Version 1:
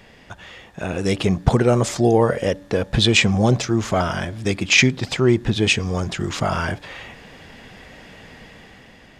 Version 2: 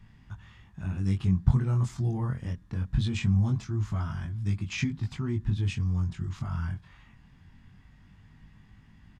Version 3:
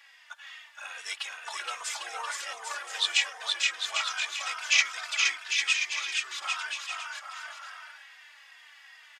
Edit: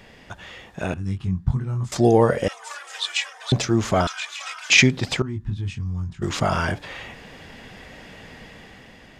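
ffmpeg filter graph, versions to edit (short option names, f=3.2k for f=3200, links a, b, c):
-filter_complex "[1:a]asplit=2[a][b];[2:a]asplit=2[c][d];[0:a]asplit=5[e][f][g][h][i];[e]atrim=end=0.942[j];[a]atrim=start=0.938:end=1.922[k];[f]atrim=start=1.918:end=2.482[l];[c]atrim=start=2.478:end=3.522[m];[g]atrim=start=3.518:end=4.072[n];[d]atrim=start=4.068:end=4.702[o];[h]atrim=start=4.698:end=5.222[p];[b]atrim=start=5.218:end=6.222[q];[i]atrim=start=6.218[r];[j][k]acrossfade=d=0.004:c1=hsin:c2=hsin[s];[s][l]acrossfade=d=0.004:c1=hsin:c2=hsin[t];[t][m]acrossfade=d=0.004:c1=hsin:c2=hsin[u];[u][n]acrossfade=d=0.004:c1=hsin:c2=hsin[v];[v][o]acrossfade=d=0.004:c1=hsin:c2=hsin[w];[w][p]acrossfade=d=0.004:c1=hsin:c2=hsin[x];[x][q]acrossfade=d=0.004:c1=hsin:c2=hsin[y];[y][r]acrossfade=d=0.004:c1=hsin:c2=hsin"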